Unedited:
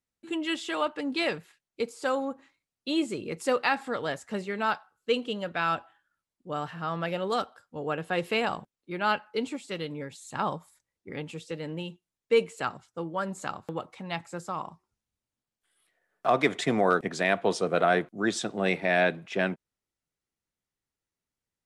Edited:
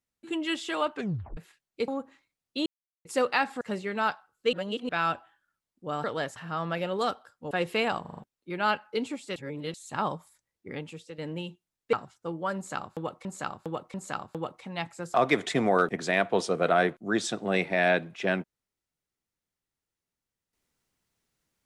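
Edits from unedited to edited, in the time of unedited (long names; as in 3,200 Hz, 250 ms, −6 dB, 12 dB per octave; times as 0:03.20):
0:00.95: tape stop 0.42 s
0:01.88–0:02.19: remove
0:02.97–0:03.36: silence
0:03.92–0:04.24: move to 0:06.67
0:05.16–0:05.52: reverse
0:07.82–0:08.08: remove
0:08.58: stutter 0.04 s, 5 plays
0:09.77–0:10.15: reverse
0:11.13–0:11.59: fade out linear, to −10 dB
0:12.34–0:12.65: remove
0:13.28–0:13.97: repeat, 3 plays
0:14.48–0:16.26: remove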